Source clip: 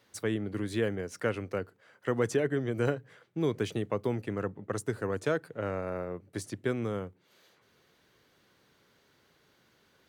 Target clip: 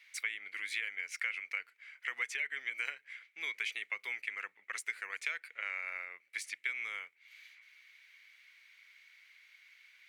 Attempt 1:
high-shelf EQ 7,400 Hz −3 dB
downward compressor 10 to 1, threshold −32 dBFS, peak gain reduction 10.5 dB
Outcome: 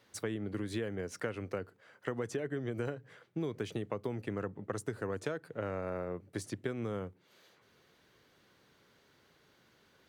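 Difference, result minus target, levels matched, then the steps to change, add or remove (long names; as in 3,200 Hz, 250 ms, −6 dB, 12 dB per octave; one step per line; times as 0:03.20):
2,000 Hz band −10.5 dB
add first: high-pass with resonance 2,200 Hz, resonance Q 9.3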